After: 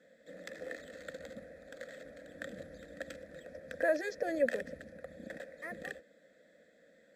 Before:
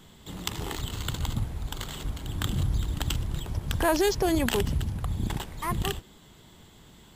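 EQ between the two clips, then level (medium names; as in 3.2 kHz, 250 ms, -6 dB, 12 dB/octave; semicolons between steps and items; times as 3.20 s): vowel filter e; high-pass 68 Hz; static phaser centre 580 Hz, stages 8; +9.0 dB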